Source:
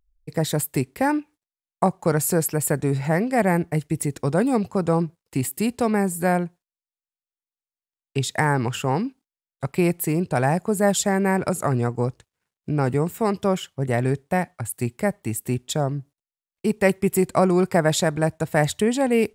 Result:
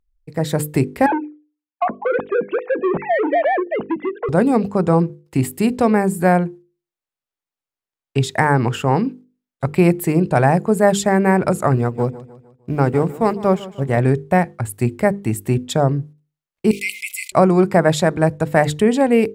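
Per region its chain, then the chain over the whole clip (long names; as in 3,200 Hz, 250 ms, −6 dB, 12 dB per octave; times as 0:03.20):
0:01.06–0:04.29: three sine waves on the formant tracks + downward compressor 8 to 1, threshold −20 dBFS + saturating transformer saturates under 730 Hz
0:11.76–0:13.97: mu-law and A-law mismatch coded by A + repeating echo 152 ms, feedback 43%, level −12.5 dB + expander for the loud parts, over −31 dBFS
0:16.71–0:17.32: linear-phase brick-wall high-pass 2,000 Hz + envelope flattener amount 70%
whole clip: high-shelf EQ 3,400 Hz −9.5 dB; mains-hum notches 50/100/150/200/250/300/350/400/450/500 Hz; automatic gain control gain up to 9 dB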